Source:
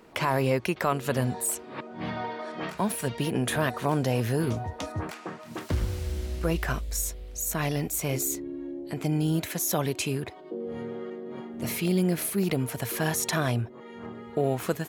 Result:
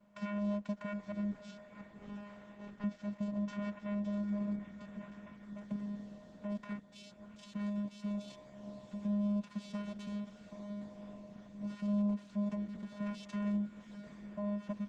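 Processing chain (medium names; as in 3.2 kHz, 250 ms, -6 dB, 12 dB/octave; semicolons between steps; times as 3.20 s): 9.49–10.21 s: formants flattened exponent 0.6; vocoder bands 4, square 205 Hz; 1.32–2.84 s: valve stage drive 32 dB, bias 0.55; on a send: echo that smears into a reverb 749 ms, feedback 55%, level -11 dB; on the sum: trim -8.5 dB; Opus 12 kbps 48 kHz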